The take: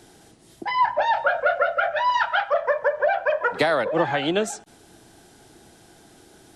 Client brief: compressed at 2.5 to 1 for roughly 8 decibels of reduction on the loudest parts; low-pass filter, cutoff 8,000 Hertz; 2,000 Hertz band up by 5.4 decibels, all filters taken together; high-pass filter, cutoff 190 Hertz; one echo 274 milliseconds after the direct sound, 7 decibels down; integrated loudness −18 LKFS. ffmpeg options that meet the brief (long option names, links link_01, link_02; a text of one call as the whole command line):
ffmpeg -i in.wav -af "highpass=190,lowpass=8000,equalizer=frequency=2000:width_type=o:gain=7.5,acompressor=threshold=-26dB:ratio=2.5,aecho=1:1:274:0.447,volume=8dB" out.wav